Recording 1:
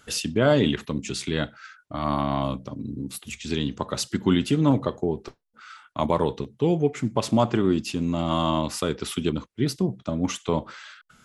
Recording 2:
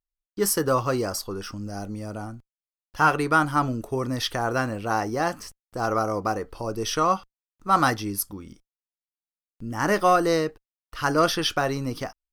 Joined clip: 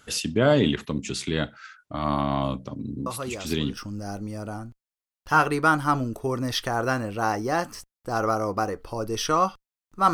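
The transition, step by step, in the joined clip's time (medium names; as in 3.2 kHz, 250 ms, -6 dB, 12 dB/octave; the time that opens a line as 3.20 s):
recording 1
3.06 s: add recording 2 from 0.74 s 0.71 s -8.5 dB
3.77 s: go over to recording 2 from 1.45 s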